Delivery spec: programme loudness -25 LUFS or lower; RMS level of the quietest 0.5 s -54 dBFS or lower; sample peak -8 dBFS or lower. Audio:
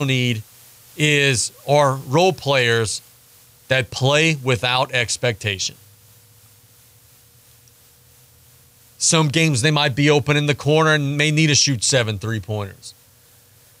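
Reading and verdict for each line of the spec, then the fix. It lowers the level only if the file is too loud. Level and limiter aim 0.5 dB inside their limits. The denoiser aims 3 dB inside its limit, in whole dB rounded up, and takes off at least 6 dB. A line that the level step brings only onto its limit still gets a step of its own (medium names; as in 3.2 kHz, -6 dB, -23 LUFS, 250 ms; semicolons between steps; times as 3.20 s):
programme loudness -17.5 LUFS: fail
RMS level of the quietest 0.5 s -52 dBFS: fail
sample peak -5.0 dBFS: fail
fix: trim -8 dB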